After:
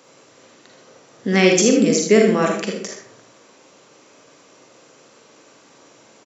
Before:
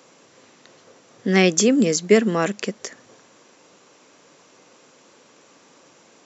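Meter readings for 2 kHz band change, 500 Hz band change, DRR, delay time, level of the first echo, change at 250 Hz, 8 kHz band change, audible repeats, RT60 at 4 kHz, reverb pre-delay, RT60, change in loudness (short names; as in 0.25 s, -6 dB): +2.5 dB, +3.5 dB, 0.5 dB, 79 ms, -7.5 dB, +2.0 dB, n/a, 1, 0.35 s, 38 ms, 0.50 s, +2.5 dB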